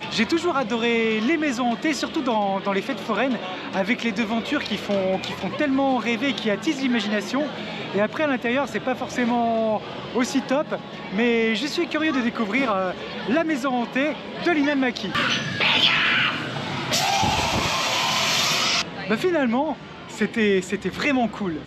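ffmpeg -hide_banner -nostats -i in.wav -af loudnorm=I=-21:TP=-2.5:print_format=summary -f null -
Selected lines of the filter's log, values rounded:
Input Integrated:    -22.6 LUFS
Input True Peak:      -5.4 dBTP
Input LRA:             3.2 LU
Input Threshold:     -32.6 LUFS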